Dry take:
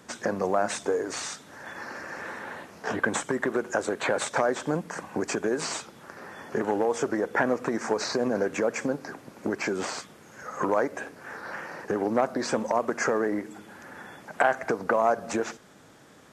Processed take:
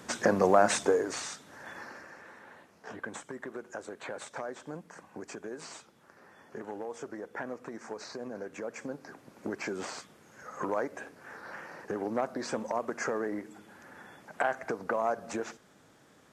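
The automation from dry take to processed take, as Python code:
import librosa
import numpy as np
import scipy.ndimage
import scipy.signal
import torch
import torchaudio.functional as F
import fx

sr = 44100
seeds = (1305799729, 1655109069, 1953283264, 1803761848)

y = fx.gain(x, sr, db=fx.line((0.79, 3.0), (1.25, -4.5), (1.75, -4.5), (2.23, -14.0), (8.46, -14.0), (9.39, -7.0)))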